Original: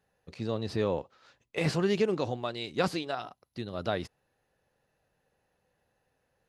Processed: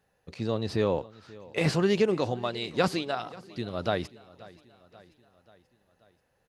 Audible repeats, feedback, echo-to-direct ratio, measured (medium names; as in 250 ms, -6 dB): 3, 57%, -19.5 dB